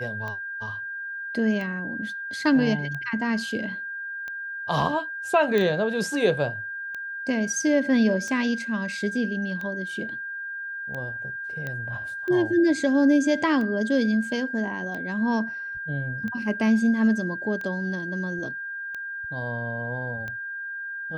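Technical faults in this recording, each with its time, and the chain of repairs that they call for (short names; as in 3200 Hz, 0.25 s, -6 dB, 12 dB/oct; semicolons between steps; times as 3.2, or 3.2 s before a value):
tick 45 rpm -22 dBFS
tone 1600 Hz -31 dBFS
5.58 pop -13 dBFS
11.67 pop -19 dBFS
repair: de-click; notch 1600 Hz, Q 30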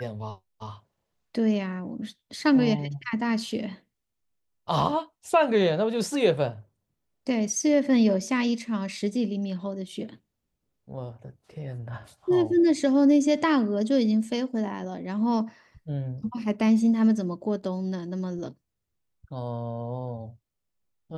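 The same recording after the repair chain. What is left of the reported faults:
5.58 pop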